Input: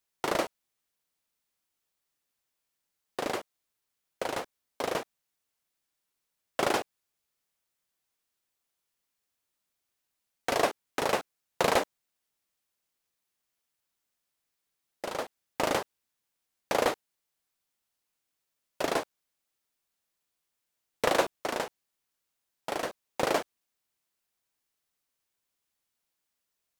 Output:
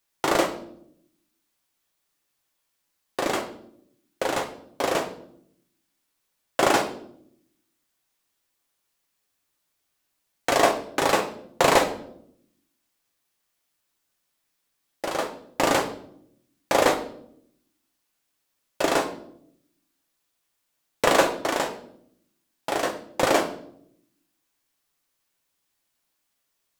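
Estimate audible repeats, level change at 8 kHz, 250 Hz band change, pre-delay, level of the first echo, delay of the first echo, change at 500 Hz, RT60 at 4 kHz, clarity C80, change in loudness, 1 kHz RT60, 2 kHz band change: no echo audible, +8.5 dB, +8.5 dB, 3 ms, no echo audible, no echo audible, +7.0 dB, 0.50 s, 14.0 dB, +7.0 dB, 0.55 s, +7.5 dB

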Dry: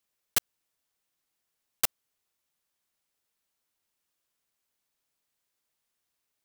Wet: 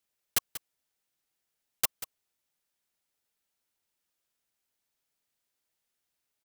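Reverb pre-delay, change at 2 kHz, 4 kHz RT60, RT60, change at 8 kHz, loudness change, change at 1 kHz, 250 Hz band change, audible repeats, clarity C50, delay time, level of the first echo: no reverb audible, −1.5 dB, no reverb audible, no reverb audible, −1.5 dB, −1.5 dB, −2.0 dB, −1.5 dB, 1, no reverb audible, 188 ms, −13.0 dB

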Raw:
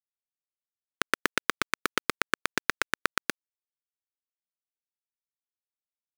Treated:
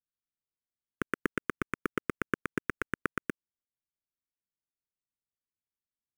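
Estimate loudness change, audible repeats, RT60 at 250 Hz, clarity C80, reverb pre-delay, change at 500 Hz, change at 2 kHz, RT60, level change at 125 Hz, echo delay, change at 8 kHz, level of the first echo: −6.5 dB, no echo audible, no reverb audible, no reverb audible, no reverb audible, −1.5 dB, −7.5 dB, no reverb audible, +5.0 dB, no echo audible, −16.5 dB, no echo audible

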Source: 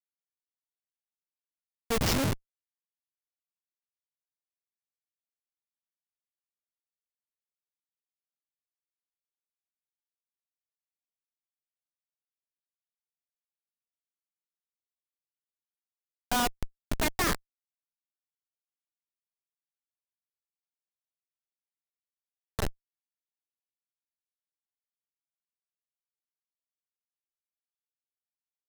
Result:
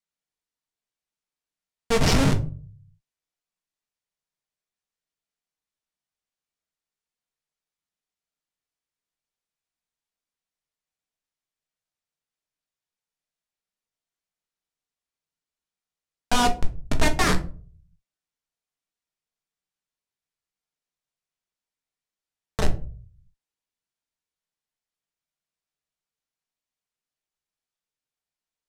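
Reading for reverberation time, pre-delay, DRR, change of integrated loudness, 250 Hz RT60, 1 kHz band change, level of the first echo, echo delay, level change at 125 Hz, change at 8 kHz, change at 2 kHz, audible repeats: 0.40 s, 4 ms, 4.5 dB, +6.0 dB, 0.60 s, +7.0 dB, no echo audible, no echo audible, +9.0 dB, +4.0 dB, +6.0 dB, no echo audible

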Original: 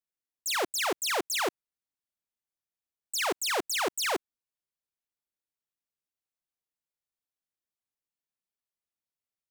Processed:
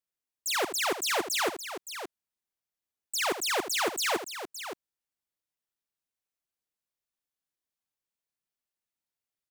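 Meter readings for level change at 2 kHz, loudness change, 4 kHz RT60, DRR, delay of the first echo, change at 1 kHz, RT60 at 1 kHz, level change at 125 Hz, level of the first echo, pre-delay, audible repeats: +1.0 dB, −0.5 dB, no reverb audible, no reverb audible, 79 ms, +0.5 dB, no reverb audible, +0.5 dB, −11.0 dB, no reverb audible, 2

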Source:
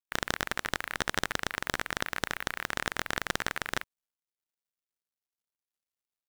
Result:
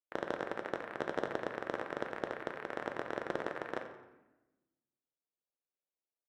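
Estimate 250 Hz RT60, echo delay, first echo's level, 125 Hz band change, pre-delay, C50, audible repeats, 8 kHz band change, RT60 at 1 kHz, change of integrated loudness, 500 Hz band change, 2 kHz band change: 1.5 s, 88 ms, −14.0 dB, −10.0 dB, 3 ms, 7.5 dB, 1, below −20 dB, 1.0 s, −7.0 dB, +3.0 dB, −10.5 dB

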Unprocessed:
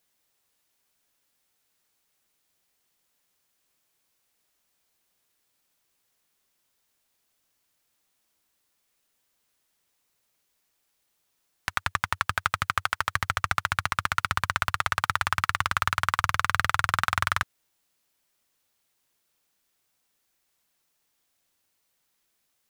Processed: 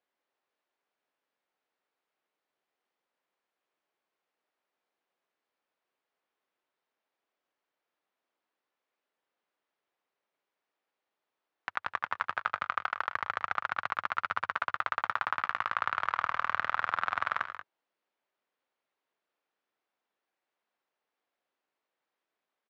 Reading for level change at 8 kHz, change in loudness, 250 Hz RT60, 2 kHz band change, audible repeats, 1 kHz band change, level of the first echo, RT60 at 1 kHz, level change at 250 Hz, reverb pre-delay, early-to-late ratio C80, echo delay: below −25 dB, −5.5 dB, no reverb audible, −6.0 dB, 2, −4.0 dB, −15.0 dB, no reverb audible, −11.5 dB, no reverb audible, no reverb audible, 74 ms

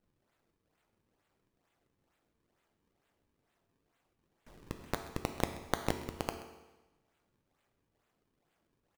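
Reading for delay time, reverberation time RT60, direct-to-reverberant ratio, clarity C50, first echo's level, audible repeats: 130 ms, 1.1 s, 6.0 dB, 8.5 dB, −18.0 dB, 1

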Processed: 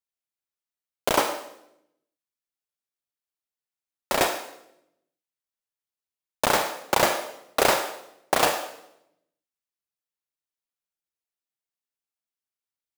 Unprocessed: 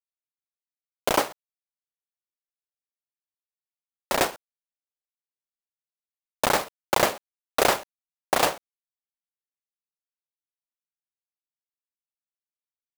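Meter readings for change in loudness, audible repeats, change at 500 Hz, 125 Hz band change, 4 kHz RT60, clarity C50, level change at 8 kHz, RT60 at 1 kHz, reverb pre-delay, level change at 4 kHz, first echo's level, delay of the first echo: +0.5 dB, no echo audible, +1.0 dB, 0.0 dB, 0.70 s, 7.0 dB, +1.0 dB, 0.70 s, 33 ms, +1.5 dB, no echo audible, no echo audible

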